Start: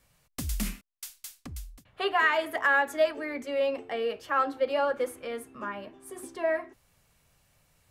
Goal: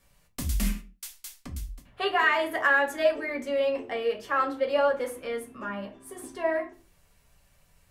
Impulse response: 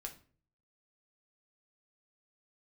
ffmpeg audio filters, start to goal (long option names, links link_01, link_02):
-filter_complex "[1:a]atrim=start_sample=2205,afade=type=out:start_time=0.34:duration=0.01,atrim=end_sample=15435,asetrate=57330,aresample=44100[link_01];[0:a][link_01]afir=irnorm=-1:irlink=0,volume=7.5dB"